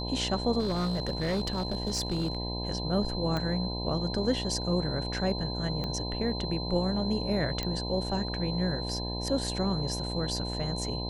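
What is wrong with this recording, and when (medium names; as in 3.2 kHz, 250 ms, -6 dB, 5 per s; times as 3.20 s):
buzz 60 Hz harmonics 17 -35 dBFS
whine 4.1 kHz -37 dBFS
0.59–2.37 s: clipped -25 dBFS
3.37 s: pop -19 dBFS
5.84 s: pop -21 dBFS
7.63 s: pop -17 dBFS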